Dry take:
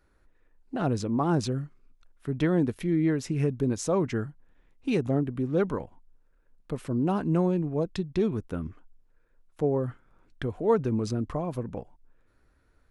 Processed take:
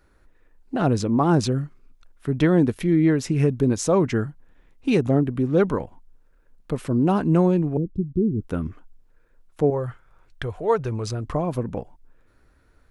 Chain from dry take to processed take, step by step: 7.77–8.41 s: inverse Chebyshev low-pass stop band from 720 Hz, stop band 40 dB; 9.70–11.25 s: peaking EQ 250 Hz -14 dB 1.1 oct; trim +6.5 dB

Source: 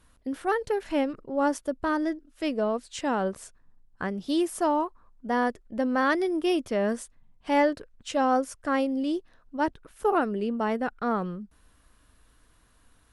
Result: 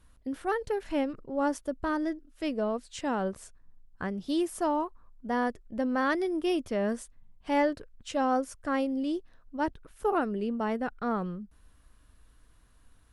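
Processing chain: bass shelf 130 Hz +7.5 dB; trim -4 dB

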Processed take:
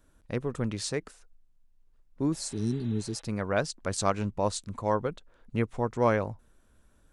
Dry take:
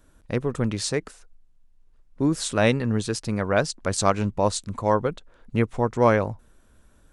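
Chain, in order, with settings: spectral replace 2.35–3.19 s, 450–4000 Hz after; trim -6 dB

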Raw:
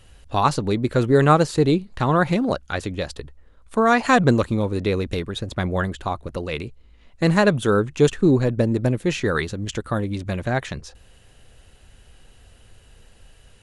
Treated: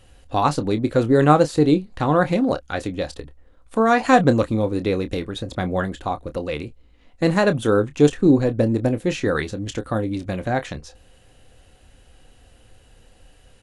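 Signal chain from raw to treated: doubling 27 ms -11.5 dB; small resonant body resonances 290/520/740 Hz, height 7 dB; trim -2 dB

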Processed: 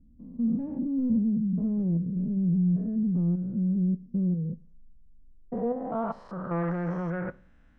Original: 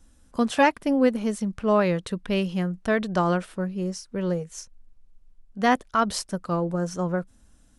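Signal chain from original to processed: spectrogram pixelated in time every 200 ms; saturation -27 dBFS, distortion -10 dB; low-pass sweep 220 Hz -> 2 kHz, 5.06–6.76 s; on a send: reverberation RT60 0.40 s, pre-delay 3 ms, DRR 14.5 dB

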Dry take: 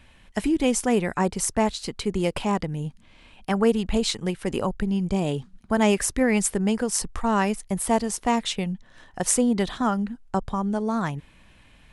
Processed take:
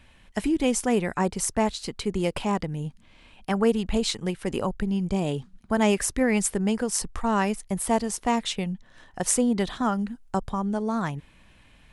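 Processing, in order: 9.98–10.49 s: treble shelf 4.8 kHz -> 8.1 kHz +7.5 dB; trim -1.5 dB

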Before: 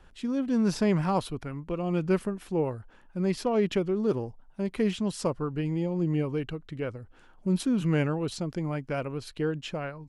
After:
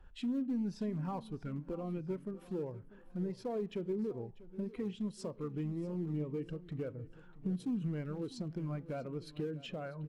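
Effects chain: bass shelf 320 Hz -2.5 dB; compression 5:1, threshold -42 dBFS, peak gain reduction 18.5 dB; in parallel at -11 dB: integer overflow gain 38 dB; on the sum: feedback delay 643 ms, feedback 49%, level -12.5 dB; on a send at -16 dB: reverberation RT60 0.85 s, pre-delay 33 ms; on the sum: spectral contrast expander 1.5:1; trim +3.5 dB

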